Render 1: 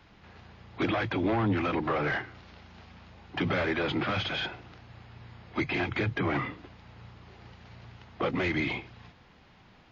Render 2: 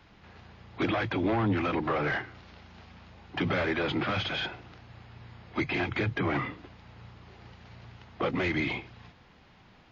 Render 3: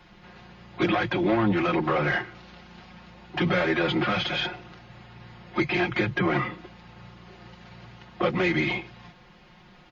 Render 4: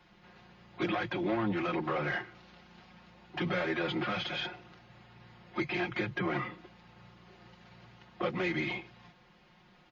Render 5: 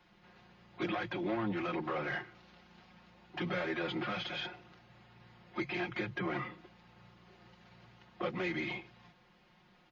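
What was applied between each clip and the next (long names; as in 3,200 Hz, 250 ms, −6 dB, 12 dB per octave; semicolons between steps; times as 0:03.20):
no processing that can be heard
comb filter 5.6 ms, depth 79%; level +2.5 dB
low-shelf EQ 71 Hz −7 dB; level −8 dB
mains-hum notches 50/100/150 Hz; level −3.5 dB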